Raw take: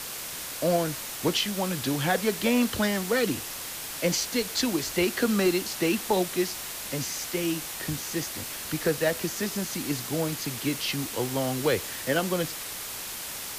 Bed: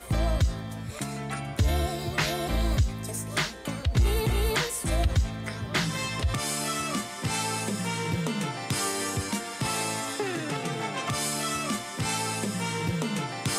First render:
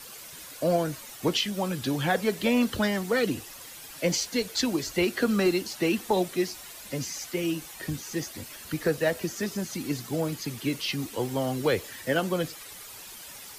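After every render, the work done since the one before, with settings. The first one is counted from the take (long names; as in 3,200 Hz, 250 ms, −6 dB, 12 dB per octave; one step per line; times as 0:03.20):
broadband denoise 11 dB, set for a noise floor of −37 dBFS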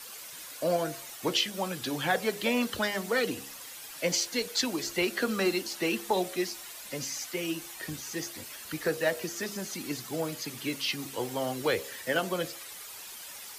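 low-shelf EQ 280 Hz −10.5 dB
hum removal 68.35 Hz, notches 11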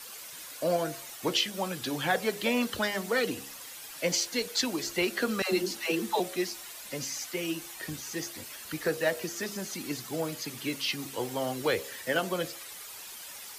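0:05.42–0:06.20: all-pass dispersion lows, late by 112 ms, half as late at 490 Hz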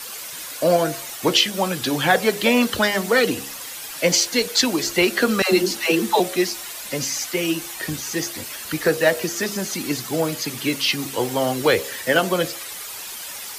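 level +10.5 dB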